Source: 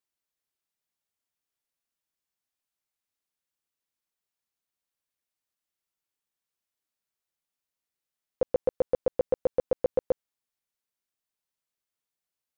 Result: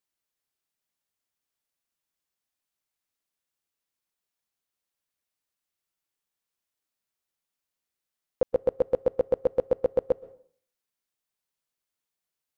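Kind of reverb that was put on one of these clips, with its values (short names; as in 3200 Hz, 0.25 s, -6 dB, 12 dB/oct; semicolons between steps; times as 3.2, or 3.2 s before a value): plate-style reverb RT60 0.52 s, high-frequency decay 0.85×, pre-delay 0.11 s, DRR 20 dB; gain +1.5 dB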